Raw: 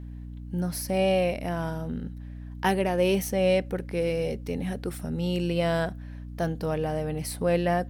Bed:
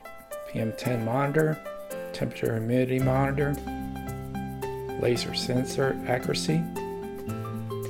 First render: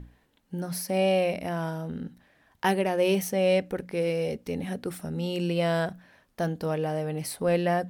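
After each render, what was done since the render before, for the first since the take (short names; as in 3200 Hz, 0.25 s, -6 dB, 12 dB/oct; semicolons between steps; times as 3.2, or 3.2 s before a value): notches 60/120/180/240/300 Hz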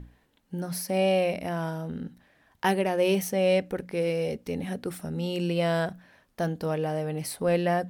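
nothing audible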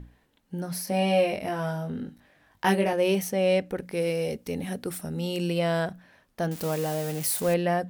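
0.85–2.93 doubler 20 ms -3 dB; 3.82–5.59 high shelf 5900 Hz +8 dB; 6.51–7.54 switching spikes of -24.5 dBFS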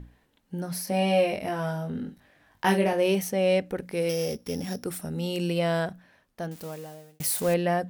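1.9–3.06 doubler 48 ms -12 dB; 4.09–4.85 sample sorter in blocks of 8 samples; 5.75–7.2 fade out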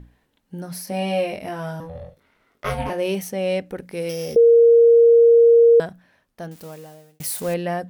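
1.8–2.9 ring modulator 330 Hz; 4.36–5.8 bleep 466 Hz -8.5 dBFS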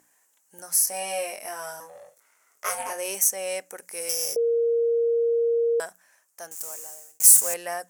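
HPF 840 Hz 12 dB/oct; resonant high shelf 5200 Hz +12 dB, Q 3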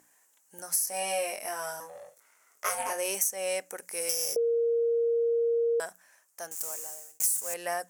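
compressor 16:1, threshold -24 dBFS, peak gain reduction 15.5 dB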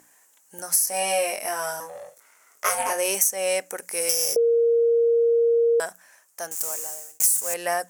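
gain +7 dB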